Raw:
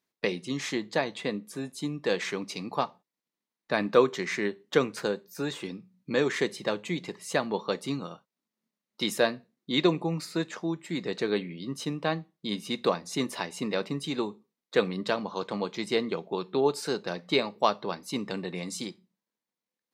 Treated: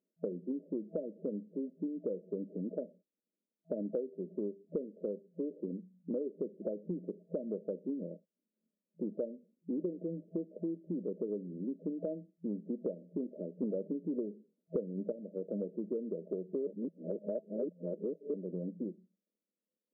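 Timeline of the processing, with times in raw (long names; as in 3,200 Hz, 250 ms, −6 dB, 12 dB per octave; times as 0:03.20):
0:13.63–0:15.12: clip gain +9.5 dB
0:16.67–0:18.34: reverse
whole clip: brick-wall band-pass 170–650 Hz; downward compressor 10 to 1, threshold −34 dBFS; level +1 dB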